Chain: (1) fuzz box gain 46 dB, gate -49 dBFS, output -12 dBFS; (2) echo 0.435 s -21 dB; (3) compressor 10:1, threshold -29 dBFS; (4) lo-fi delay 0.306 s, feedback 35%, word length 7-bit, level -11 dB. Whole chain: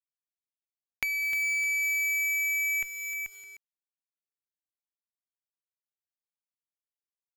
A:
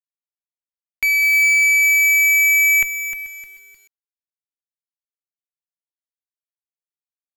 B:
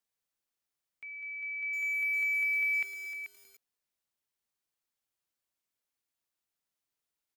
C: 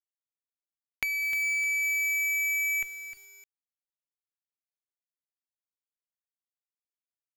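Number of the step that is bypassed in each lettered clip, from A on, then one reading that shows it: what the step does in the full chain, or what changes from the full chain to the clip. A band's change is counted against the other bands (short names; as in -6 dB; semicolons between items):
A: 3, mean gain reduction 12.0 dB; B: 1, distortion -1 dB; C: 2, momentary loudness spread change +1 LU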